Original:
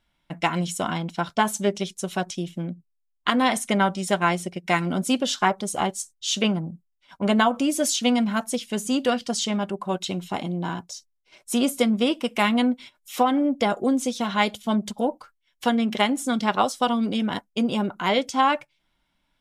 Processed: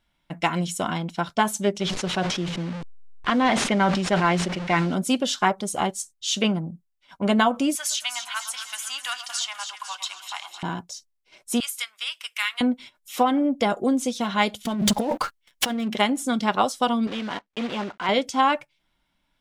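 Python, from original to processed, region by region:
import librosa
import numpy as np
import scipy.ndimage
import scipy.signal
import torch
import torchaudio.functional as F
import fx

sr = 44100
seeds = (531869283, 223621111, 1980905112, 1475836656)

y = fx.chain(x, sr, fx.delta_mod(bps=64000, step_db=-33.0),
    fx.lowpass(hz=4200.0, slope=12),
    fx.sustainer(db_per_s=38.0), at=(1.8, 4.95))
y = fx.chain(y, sr, fx.cheby2_highpass(hz=490.0, order=4, stop_db=40),
    fx.echo_split(split_hz=1300.0, low_ms=110, high_ms=251, feedback_pct=52, wet_db=-10.0),
    fx.band_squash(depth_pct=40), at=(7.75, 10.63))
y = fx.chain(y, sr, fx.highpass(hz=1400.0, slope=24),
    fx.high_shelf(hz=12000.0, db=3.0), at=(11.6, 12.61))
y = fx.chain(y, sr, fx.over_compress(threshold_db=-34.0, ratio=-1.0),
    fx.leveller(passes=3), at=(14.65, 15.88))
y = fx.chain(y, sr, fx.block_float(bits=3),
    fx.lowpass(hz=3200.0, slope=12),
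    fx.low_shelf(hz=290.0, db=-11.0), at=(17.07, 18.09))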